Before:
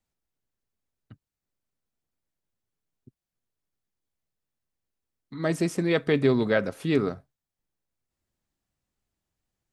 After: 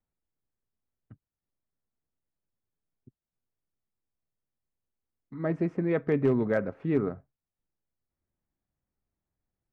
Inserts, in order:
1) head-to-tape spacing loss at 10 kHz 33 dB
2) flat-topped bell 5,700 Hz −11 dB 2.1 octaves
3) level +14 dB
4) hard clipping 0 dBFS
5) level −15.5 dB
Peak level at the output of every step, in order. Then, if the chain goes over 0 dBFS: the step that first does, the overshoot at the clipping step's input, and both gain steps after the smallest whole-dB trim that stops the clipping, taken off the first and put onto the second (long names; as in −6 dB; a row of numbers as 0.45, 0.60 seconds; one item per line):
−11.0, −11.0, +3.0, 0.0, −15.5 dBFS
step 3, 3.0 dB
step 3 +11 dB, step 5 −12.5 dB